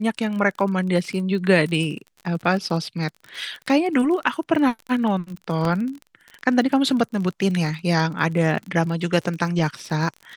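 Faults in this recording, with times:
crackle 36/s -29 dBFS
5.65 gap 2.1 ms

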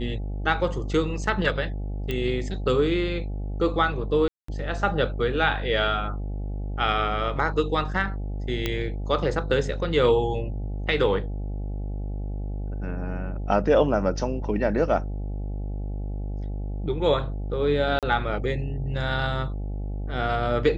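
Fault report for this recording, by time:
buzz 50 Hz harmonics 17 -30 dBFS
2.11 pop -15 dBFS
4.28–4.48 gap 0.204 s
8.66 pop -11 dBFS
17.99–18.03 gap 37 ms

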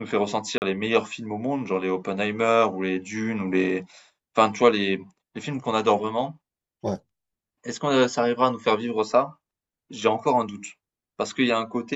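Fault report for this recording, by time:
0.58–0.62 gap 39 ms

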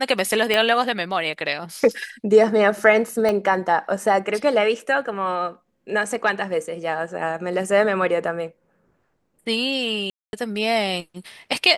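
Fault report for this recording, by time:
0.54 pop -7 dBFS
3.29 pop -11 dBFS
10.1–10.33 gap 0.231 s

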